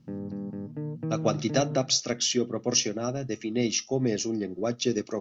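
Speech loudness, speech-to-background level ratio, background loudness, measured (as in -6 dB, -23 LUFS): -27.5 LUFS, 7.5 dB, -35.0 LUFS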